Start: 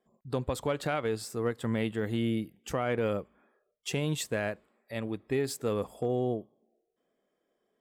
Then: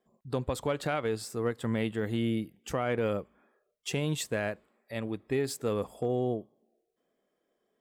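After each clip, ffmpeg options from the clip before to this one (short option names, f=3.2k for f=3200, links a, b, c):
-af "equalizer=f=12k:w=7.8:g=-2"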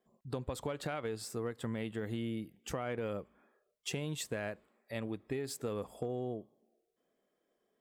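-af "acompressor=threshold=-32dB:ratio=6,volume=-2dB"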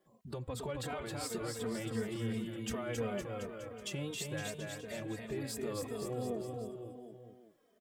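-filter_complex "[0:a]alimiter=level_in=12dB:limit=-24dB:level=0:latency=1:release=317,volume=-12dB,aecho=1:1:270|513|731.7|928.5|1106:0.631|0.398|0.251|0.158|0.1,asplit=2[a][b];[b]adelay=3,afreqshift=-2.8[c];[a][c]amix=inputs=2:normalize=1,volume=8.5dB"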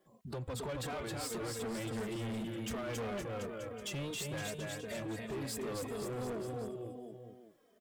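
-af "asoftclip=type=hard:threshold=-38.5dB,volume=2.5dB"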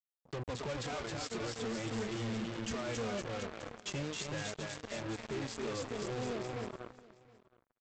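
-af "aresample=16000,acrusher=bits=5:mix=0:aa=0.5,aresample=44100,aecho=1:1:719:0.0794,volume=2.5dB"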